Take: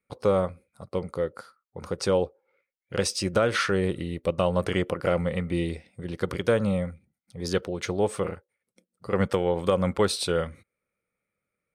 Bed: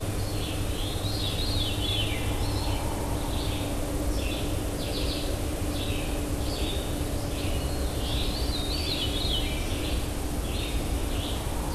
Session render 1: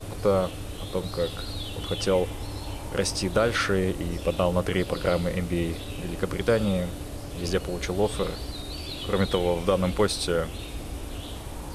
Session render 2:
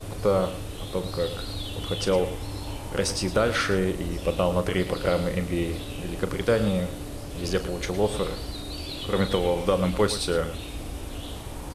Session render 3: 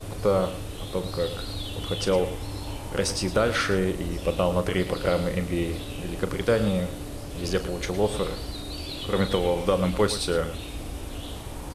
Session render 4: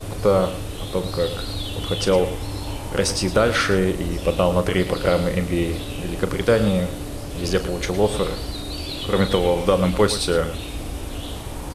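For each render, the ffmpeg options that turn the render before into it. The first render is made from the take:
-filter_complex "[1:a]volume=-6.5dB[a];[0:a][a]amix=inputs=2:normalize=0"
-filter_complex "[0:a]asplit=2[a][b];[b]adelay=38,volume=-13dB[c];[a][c]amix=inputs=2:normalize=0,aecho=1:1:110:0.224"
-af anull
-af "volume=5dB"

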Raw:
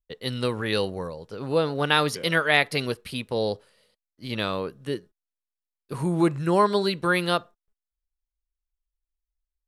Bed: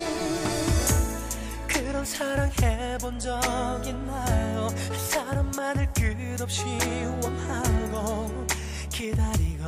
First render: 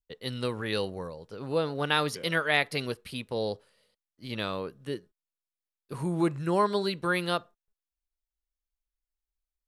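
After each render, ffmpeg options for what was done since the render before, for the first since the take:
-af "volume=-5dB"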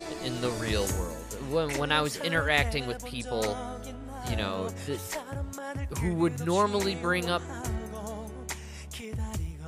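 -filter_complex "[1:a]volume=-9dB[a];[0:a][a]amix=inputs=2:normalize=0"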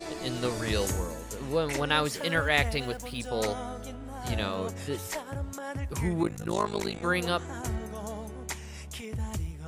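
-filter_complex "[0:a]asettb=1/sr,asplit=3[a][b][c];[a]atrim=end=2.104[d];[b]atrim=start=2.1:end=3.27,asetpts=PTS-STARTPTS,afade=t=in:d=0.004:c=qsin,afade=t=out:st=1.166:d=0.004:c=qsin,aeval=exprs='val(0)*gte(abs(val(0)),0.00376)':c=same[e];[c]atrim=start=3.266[f];[d][e]acrossfade=d=0.004:c1=hsin:c2=qsin[g];[g][f]acrossfade=d=0.004:c1=qsin:c2=hsin,asettb=1/sr,asplit=3[h][i][j];[h]atrim=end=6.234[k];[i]atrim=start=6.23:end=7.02,asetpts=PTS-STARTPTS,afade=t=in:d=0.004:c=qsin,afade=t=out:st=0.786:d=0.004:c=qsin,tremolo=f=53:d=0.974[l];[j]atrim=start=7.016[m];[k][l]acrossfade=d=0.004:c1=hsin:c2=qsin[n];[n][m]acrossfade=d=0.004:c1=qsin:c2=hsin"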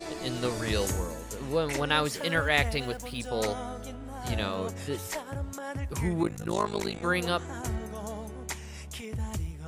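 -af anull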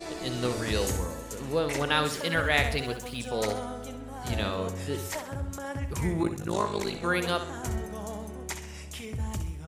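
-af "aecho=1:1:65|130|195|260:0.335|0.134|0.0536|0.0214"

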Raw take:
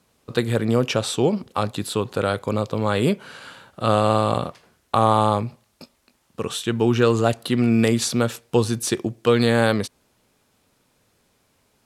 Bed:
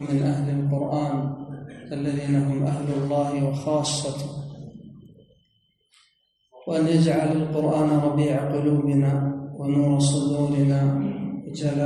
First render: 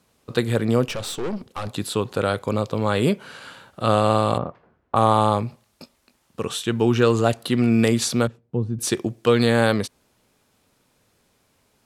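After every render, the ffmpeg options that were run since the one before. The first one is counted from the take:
-filter_complex "[0:a]asettb=1/sr,asplit=3[a][b][c];[a]atrim=end=0.854[d];[b]atrim=start=0.85:end=1.67,asetpts=PTS-STARTPTS,afade=t=in:d=0.004:c=qsin,afade=t=out:st=0.816:d=0.004:c=qsin,aeval=exprs='(tanh(15.8*val(0)+0.55)-tanh(0.55))/15.8':c=same[e];[c]atrim=start=1.666[f];[d][e]acrossfade=d=0.004:c1=hsin:c2=qsin[g];[g][f]acrossfade=d=0.004:c1=qsin:c2=hsin,asplit=3[h][i][j];[h]afade=t=out:st=4.37:d=0.02[k];[i]lowpass=1.3k,afade=t=in:st=4.37:d=0.02,afade=t=out:st=4.95:d=0.02[l];[j]afade=t=in:st=4.95:d=0.02[m];[k][l][m]amix=inputs=3:normalize=0,asettb=1/sr,asplit=3[n][o][p];[n]atrim=end=8.274[q];[o]atrim=start=8.27:end=8.79,asetpts=PTS-STARTPTS,afade=t=in:d=0.004:c=qsin,afade=t=out:st=0.516:d=0.004:c=qsin,bandpass=f=140:t=q:w=1[r];[p]atrim=start=8.786[s];[q][r]acrossfade=d=0.004:c1=hsin:c2=qsin[t];[t][s]acrossfade=d=0.004:c1=qsin:c2=hsin"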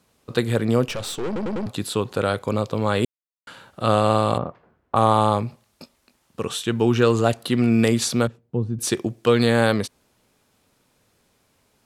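-filter_complex "[0:a]asplit=7[a][b][c][d][e][f][g];[a]atrim=end=1.362[h];[b]atrim=start=1.258:end=1.362[i];[c]atrim=start=1.258:end=1.362[j];[d]atrim=start=1.258:end=1.362[k];[e]atrim=start=1.658:end=3.05,asetpts=PTS-STARTPTS,afade=t=out:st=1.388:d=0.004:c=hsin[l];[f]atrim=start=3.05:end=3.47,asetpts=PTS-STARTPTS,volume=0[m];[g]atrim=start=3.47,asetpts=PTS-STARTPTS,afade=t=in:d=0.004:c=hsin[n];[h][i]acrossfade=d=0.004:c1=hsin:c2=hsin[o];[o][j]acrossfade=d=0.004:c1=hsin:c2=hsin[p];[p][k]acrossfade=d=0.004:c1=hsin:c2=hsin[q];[l][m][n]concat=n=3:v=0:a=1[r];[q][r]acrossfade=d=0.004:c1=hsin:c2=hsin"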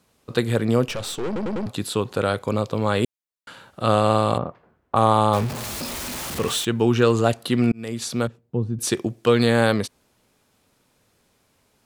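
-filter_complex "[0:a]asettb=1/sr,asplit=3[a][b][c];[a]atrim=end=5.334[d];[b]atrim=start=5.33:end=6.65,asetpts=PTS-STARTPTS,afade=t=in:d=0.004:c=qsin,afade=t=out:st=1.316:d=0.004:c=qsin,aeval=exprs='val(0)+0.5*0.0562*sgn(val(0))':c=same[e];[c]atrim=start=6.646[f];[d][e]acrossfade=d=0.004:c1=hsin:c2=qsin[g];[g][f]acrossfade=d=0.004:c1=qsin:c2=hsin,asplit=2[h][i];[h]atrim=end=7.72,asetpts=PTS-STARTPTS,afade=t=out:st=7.716:d=0.004:c=hsin[j];[i]atrim=start=7.72,asetpts=PTS-STARTPTS,afade=t=in:d=0.98:c=qsin[k];[j][k]concat=n=2:v=0:a=1"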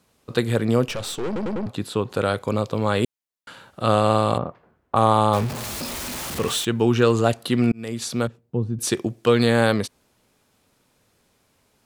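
-filter_complex "[0:a]asettb=1/sr,asplit=3[a][b][c];[a]atrim=end=1.534[d];[b]atrim=start=1.53:end=2.1,asetpts=PTS-STARTPTS,afade=t=in:d=0.004:c=qsin,afade=t=out:st=0.566:d=0.004:c=qsin,highshelf=f=3.5k:g=-8.5[e];[c]atrim=start=2.096[f];[d][e]acrossfade=d=0.004:c1=hsin:c2=qsin[g];[g][f]acrossfade=d=0.004:c1=qsin:c2=hsin"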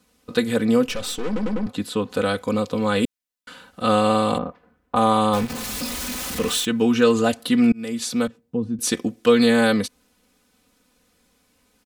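-af "equalizer=f=750:w=1:g=-4,aecho=1:1:4:0.8"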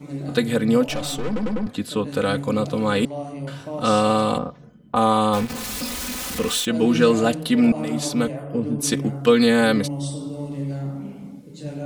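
-filter_complex "[1:a]volume=-8dB[a];[0:a][a]amix=inputs=2:normalize=0"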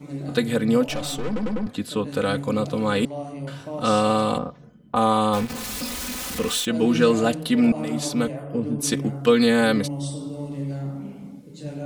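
-af "volume=-1.5dB"

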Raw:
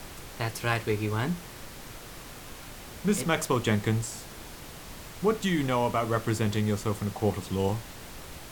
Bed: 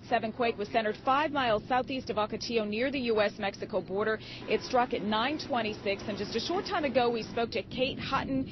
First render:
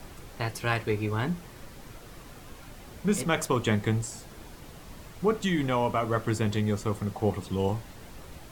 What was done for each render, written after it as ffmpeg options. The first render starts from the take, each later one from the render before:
-af "afftdn=nr=7:nf=-44"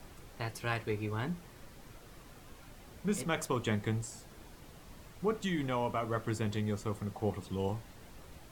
-af "volume=-7dB"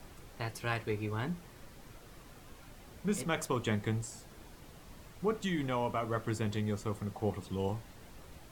-af anull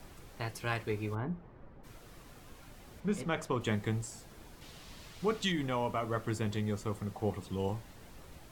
-filter_complex "[0:a]asplit=3[a][b][c];[a]afade=t=out:st=1.14:d=0.02[d];[b]lowpass=1.2k,afade=t=in:st=1.14:d=0.02,afade=t=out:st=1.83:d=0.02[e];[c]afade=t=in:st=1.83:d=0.02[f];[d][e][f]amix=inputs=3:normalize=0,asettb=1/sr,asplit=3[g][h][i];[g]atrim=end=3.004[j];[h]atrim=start=3:end=3.61,asetpts=PTS-STARTPTS,afade=t=in:d=0.004:c=qsin,afade=t=out:st=0.606:d=0.004:c=qsin,lowpass=f=3.2k:p=1[k];[i]atrim=start=3.606[l];[j][k]acrossfade=d=0.004:c1=hsin:c2=qsin[m];[m][l]acrossfade=d=0.004:c1=qsin:c2=hsin,asettb=1/sr,asplit=3[n][o][p];[n]atrim=end=4.614[q];[o]atrim=start=4.61:end=5.52,asetpts=PTS-STARTPTS,afade=t=in:d=0.004:c=qsin,afade=t=out:st=0.906:d=0.004:c=qsin,equalizer=f=3.9k:w=0.66:g=9.5[r];[p]atrim=start=5.516[s];[q][r]acrossfade=d=0.004:c1=hsin:c2=qsin[t];[t][s]acrossfade=d=0.004:c1=qsin:c2=hsin"

